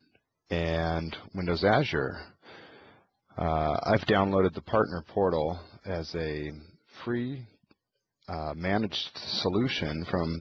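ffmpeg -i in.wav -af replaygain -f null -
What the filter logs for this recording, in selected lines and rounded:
track_gain = +8.7 dB
track_peak = 0.191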